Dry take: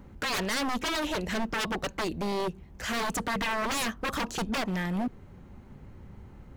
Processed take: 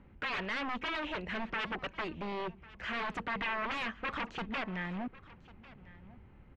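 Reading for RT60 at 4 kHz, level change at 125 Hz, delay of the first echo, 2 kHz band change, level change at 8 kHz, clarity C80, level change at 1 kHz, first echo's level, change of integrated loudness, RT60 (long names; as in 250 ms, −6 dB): no reverb audible, −9.0 dB, 1,098 ms, −3.5 dB, below −25 dB, no reverb audible, −5.5 dB, −20.0 dB, −6.0 dB, no reverb audible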